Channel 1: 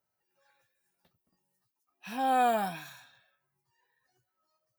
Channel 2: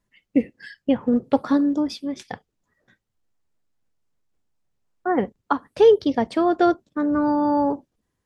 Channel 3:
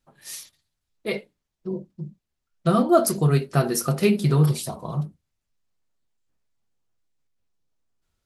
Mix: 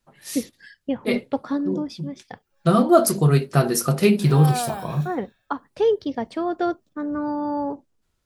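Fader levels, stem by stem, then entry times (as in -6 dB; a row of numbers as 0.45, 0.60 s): -1.5, -5.5, +2.5 dB; 2.15, 0.00, 0.00 s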